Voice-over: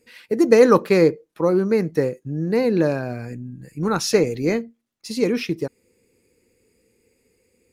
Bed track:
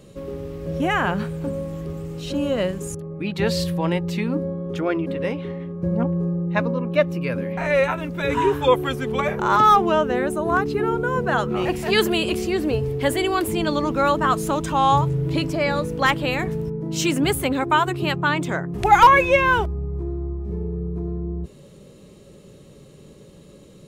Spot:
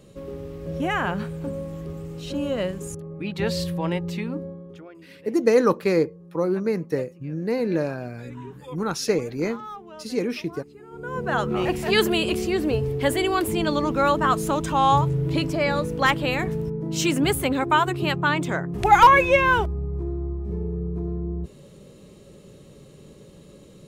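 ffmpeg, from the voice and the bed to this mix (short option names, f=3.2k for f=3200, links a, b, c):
-filter_complex "[0:a]adelay=4950,volume=-5dB[a];[1:a]volume=19dB,afade=t=out:st=4.07:d=0.83:silence=0.1,afade=t=in:st=10.9:d=0.56:silence=0.0749894[b];[a][b]amix=inputs=2:normalize=0"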